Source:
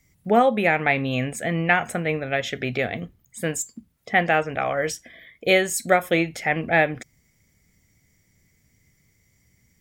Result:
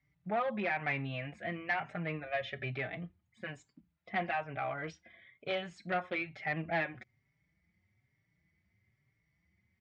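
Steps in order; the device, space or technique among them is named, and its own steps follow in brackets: 2.26–2.71 comb 1.7 ms, depth 49%; 4.12–5.77 notch 1800 Hz, Q 10; barber-pole flanger into a guitar amplifier (endless flanger 4.7 ms +1.1 Hz; soft clip -17.5 dBFS, distortion -13 dB; speaker cabinet 75–3600 Hz, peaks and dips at 250 Hz -8 dB, 470 Hz -9 dB, 3200 Hz -4 dB); gain -7 dB

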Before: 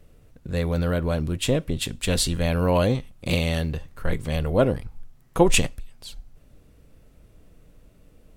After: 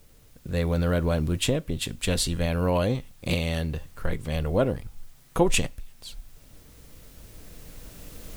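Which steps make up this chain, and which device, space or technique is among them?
cheap recorder with automatic gain (white noise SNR 34 dB; recorder AGC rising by 5.3 dB/s); gain -4 dB

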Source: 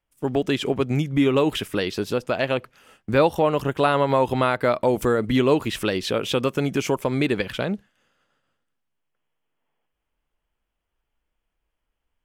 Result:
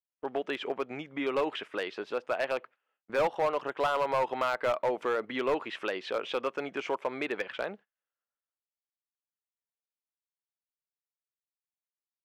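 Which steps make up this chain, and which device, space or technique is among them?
walkie-talkie (BPF 560–2300 Hz; hard clip -18.5 dBFS, distortion -12 dB; gate -46 dBFS, range -23 dB); gain -3.5 dB

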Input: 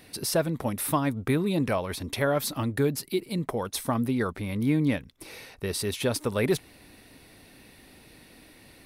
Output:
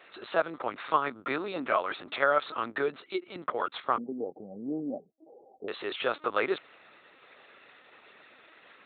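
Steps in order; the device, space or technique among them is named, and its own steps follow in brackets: 3.97–5.69 Chebyshev low-pass 820 Hz, order 8; talking toy (LPC vocoder at 8 kHz pitch kept; HPF 460 Hz 12 dB/oct; bell 1300 Hz +11 dB 0.48 oct)

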